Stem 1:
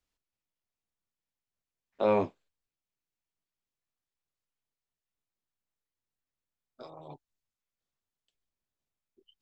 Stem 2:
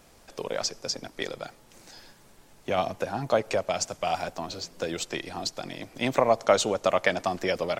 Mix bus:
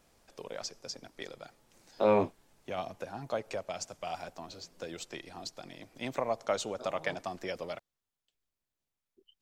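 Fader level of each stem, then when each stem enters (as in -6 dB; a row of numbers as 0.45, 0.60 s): +0.5, -10.5 dB; 0.00, 0.00 s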